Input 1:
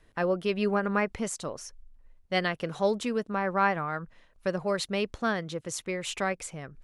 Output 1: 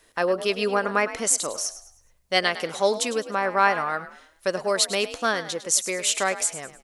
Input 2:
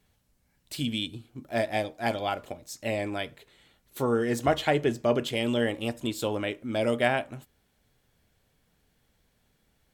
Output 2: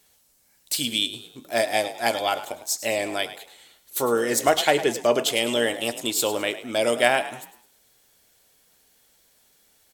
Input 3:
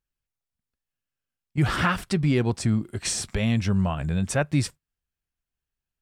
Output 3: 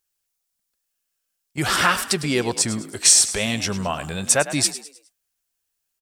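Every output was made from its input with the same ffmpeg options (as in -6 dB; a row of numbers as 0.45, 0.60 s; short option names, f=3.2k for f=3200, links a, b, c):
-filter_complex "[0:a]bass=f=250:g=-14,treble=f=4k:g=11,asplit=5[a][b][c][d][e];[b]adelay=104,afreqshift=49,volume=-13.5dB[f];[c]adelay=208,afreqshift=98,volume=-21.9dB[g];[d]adelay=312,afreqshift=147,volume=-30.3dB[h];[e]adelay=416,afreqshift=196,volume=-38.7dB[i];[a][f][g][h][i]amix=inputs=5:normalize=0,volume=5.5dB"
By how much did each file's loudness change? +6.0, +5.0, +6.0 LU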